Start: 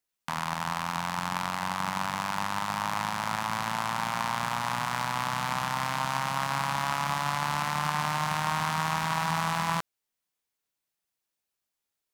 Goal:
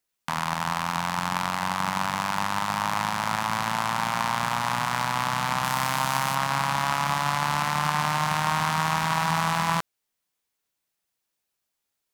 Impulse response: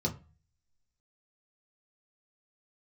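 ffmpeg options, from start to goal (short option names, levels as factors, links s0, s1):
-filter_complex "[0:a]asettb=1/sr,asplit=3[s0][s1][s2];[s0]atrim=end=5.644[s3];[s1]atrim=start=5.64:end=6.35,asetpts=PTS-STARTPTS,afade=t=in:d=0.004:c=qsin,afade=t=out:st=0.706:d=0.004:c=qsin,highshelf=f=7800:g=8.5[s4];[s2]atrim=start=6.346[s5];[s3][s4]acrossfade=d=0.004:c1=hsin:c2=qsin[s6];[s6][s5]acrossfade=d=0.004:c1=qsin:c2=hsin,volume=1.58"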